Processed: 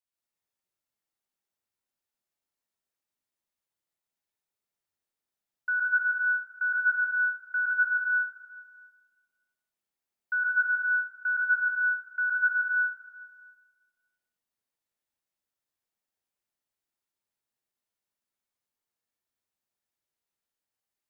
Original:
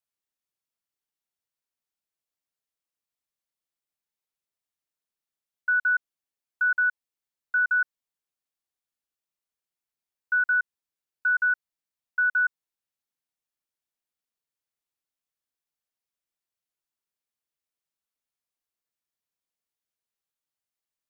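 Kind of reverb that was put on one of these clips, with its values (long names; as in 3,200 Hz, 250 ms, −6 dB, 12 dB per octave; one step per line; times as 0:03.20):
dense smooth reverb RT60 1.5 s, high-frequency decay 0.45×, pre-delay 115 ms, DRR −6 dB
level −5 dB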